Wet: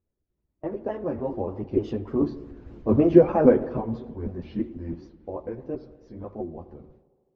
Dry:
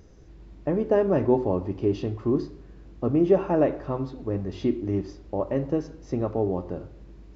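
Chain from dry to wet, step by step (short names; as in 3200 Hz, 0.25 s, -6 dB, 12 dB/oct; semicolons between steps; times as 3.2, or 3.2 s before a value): trilling pitch shifter -2 st, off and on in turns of 0.156 s; Doppler pass-by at 3.01, 19 m/s, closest 7.8 m; gate with hold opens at -54 dBFS; chorus voices 6, 1.1 Hz, delay 11 ms, depth 3 ms; harmonic-percussive split percussive +8 dB; in parallel at -0.5 dB: vocal rider within 4 dB 2 s; on the sum: short-mantissa float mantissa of 6-bit; LPF 1800 Hz 6 dB/oct; on a send: tape echo 78 ms, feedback 82%, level -19 dB, low-pass 1400 Hz; on the sum: spring tank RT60 1.6 s, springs 53 ms, chirp 60 ms, DRR 19.5 dB; gain -1 dB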